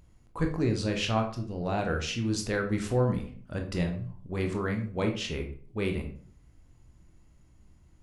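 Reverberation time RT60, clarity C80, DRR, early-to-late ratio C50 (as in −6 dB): 0.50 s, 13.0 dB, 3.0 dB, 8.5 dB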